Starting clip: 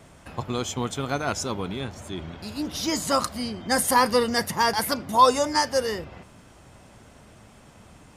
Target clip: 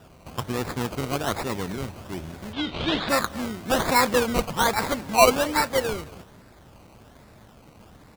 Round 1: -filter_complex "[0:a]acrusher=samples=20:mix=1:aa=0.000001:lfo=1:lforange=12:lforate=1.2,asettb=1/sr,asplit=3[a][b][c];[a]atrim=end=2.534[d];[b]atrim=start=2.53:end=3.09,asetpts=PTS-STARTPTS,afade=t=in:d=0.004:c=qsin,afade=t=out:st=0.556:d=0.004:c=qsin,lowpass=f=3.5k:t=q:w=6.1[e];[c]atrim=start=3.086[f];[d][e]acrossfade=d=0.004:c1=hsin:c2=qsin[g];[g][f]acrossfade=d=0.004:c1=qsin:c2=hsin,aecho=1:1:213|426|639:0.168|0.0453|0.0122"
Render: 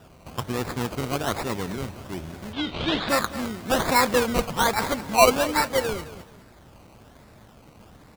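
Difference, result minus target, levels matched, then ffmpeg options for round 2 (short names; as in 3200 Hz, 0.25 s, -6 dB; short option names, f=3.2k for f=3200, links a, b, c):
echo-to-direct +6.5 dB
-filter_complex "[0:a]acrusher=samples=20:mix=1:aa=0.000001:lfo=1:lforange=12:lforate=1.2,asettb=1/sr,asplit=3[a][b][c];[a]atrim=end=2.534[d];[b]atrim=start=2.53:end=3.09,asetpts=PTS-STARTPTS,afade=t=in:d=0.004:c=qsin,afade=t=out:st=0.556:d=0.004:c=qsin,lowpass=f=3.5k:t=q:w=6.1[e];[c]atrim=start=3.086[f];[d][e]acrossfade=d=0.004:c1=hsin:c2=qsin[g];[g][f]acrossfade=d=0.004:c1=qsin:c2=hsin,aecho=1:1:213|426:0.0794|0.0214"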